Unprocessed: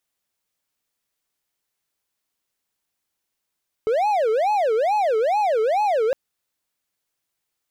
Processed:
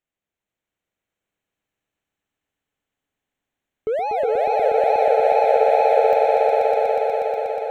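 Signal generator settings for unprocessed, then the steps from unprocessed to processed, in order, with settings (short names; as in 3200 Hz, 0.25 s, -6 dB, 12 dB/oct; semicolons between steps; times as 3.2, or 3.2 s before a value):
siren wail 432–852 Hz 2.3/s triangle -15 dBFS 2.26 s
Wiener smoothing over 9 samples; bell 1100 Hz -6.5 dB 1.1 oct; swelling echo 0.121 s, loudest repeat 5, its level -4 dB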